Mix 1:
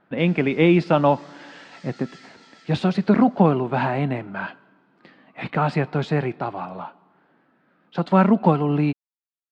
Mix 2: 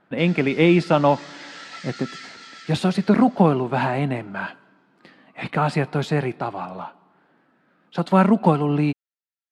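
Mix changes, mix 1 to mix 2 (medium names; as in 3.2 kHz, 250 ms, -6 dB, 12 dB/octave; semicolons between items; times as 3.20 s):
speech: remove distance through air 110 m; background +10.0 dB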